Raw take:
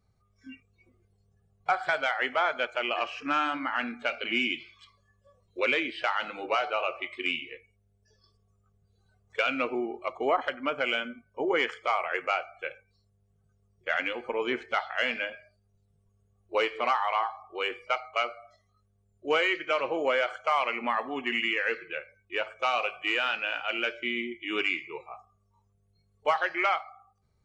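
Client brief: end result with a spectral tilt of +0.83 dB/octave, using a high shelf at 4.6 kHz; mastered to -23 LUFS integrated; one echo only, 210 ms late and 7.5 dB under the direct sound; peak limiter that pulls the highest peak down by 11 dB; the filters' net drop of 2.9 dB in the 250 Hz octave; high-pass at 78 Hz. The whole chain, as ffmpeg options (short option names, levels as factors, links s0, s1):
-af "highpass=78,equalizer=f=250:t=o:g=-4,highshelf=f=4600:g=6,alimiter=limit=0.0631:level=0:latency=1,aecho=1:1:210:0.422,volume=3.76"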